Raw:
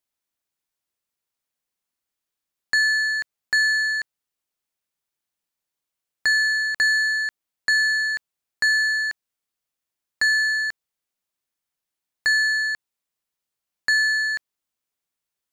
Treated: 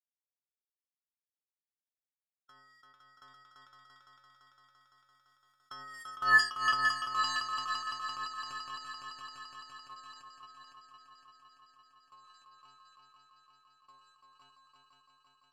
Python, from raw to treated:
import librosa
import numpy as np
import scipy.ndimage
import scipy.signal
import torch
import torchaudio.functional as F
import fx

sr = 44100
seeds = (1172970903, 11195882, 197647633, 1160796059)

y = fx.doppler_pass(x, sr, speed_mps=30, closest_m=9.3, pass_at_s=6.34)
y = fx.dynamic_eq(y, sr, hz=4600.0, q=0.79, threshold_db=-39.0, ratio=4.0, max_db=-5)
y = fx.stiff_resonator(y, sr, f0_hz=130.0, decay_s=0.63, stiffness=0.008)
y = fx.echo_heads(y, sr, ms=170, heads='second and third', feedback_pct=71, wet_db=-6.0)
y = fx.formant_shift(y, sr, semitones=-6)
y = F.gain(torch.from_numpy(y), 7.0).numpy()